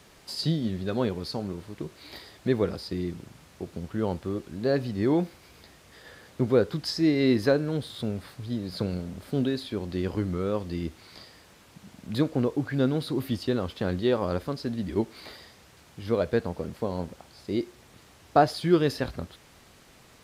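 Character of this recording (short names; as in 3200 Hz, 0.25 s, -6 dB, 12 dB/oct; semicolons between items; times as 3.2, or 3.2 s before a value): noise floor -55 dBFS; spectral tilt -6.0 dB/oct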